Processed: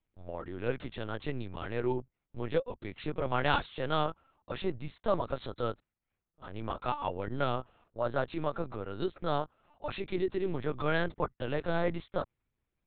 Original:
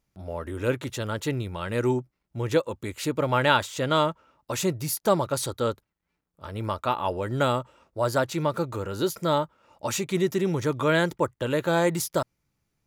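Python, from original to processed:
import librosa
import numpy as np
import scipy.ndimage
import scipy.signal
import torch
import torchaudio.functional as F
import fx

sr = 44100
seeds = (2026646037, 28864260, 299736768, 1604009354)

y = fx.lpc_vocoder(x, sr, seeds[0], excitation='pitch_kept', order=10)
y = y * 10.0 ** (-7.0 / 20.0)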